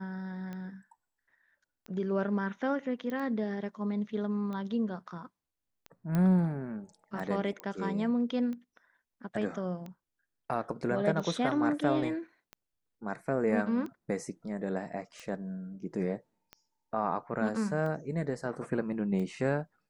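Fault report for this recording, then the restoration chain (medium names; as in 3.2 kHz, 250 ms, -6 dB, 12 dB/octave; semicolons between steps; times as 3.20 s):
tick 45 rpm -29 dBFS
3.10 s: pop -26 dBFS
6.15 s: pop -19 dBFS
7.60 s: pop -24 dBFS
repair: de-click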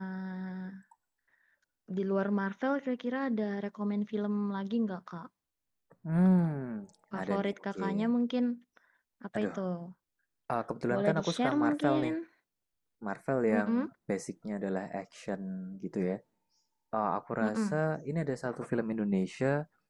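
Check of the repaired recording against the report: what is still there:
3.10 s: pop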